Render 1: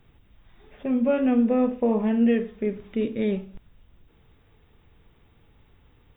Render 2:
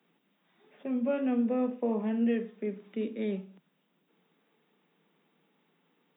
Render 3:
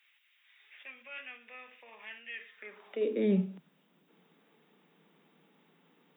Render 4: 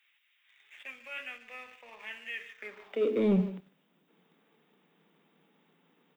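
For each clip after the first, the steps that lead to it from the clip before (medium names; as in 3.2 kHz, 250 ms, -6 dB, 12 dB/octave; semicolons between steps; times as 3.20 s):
steep high-pass 160 Hz 96 dB/octave; trim -7.5 dB
peak limiter -28 dBFS, peak gain reduction 9 dB; high-pass sweep 2.2 kHz -> 64 Hz, 2.48–3.78 s; trim +4.5 dB
speakerphone echo 150 ms, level -13 dB; waveshaping leveller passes 1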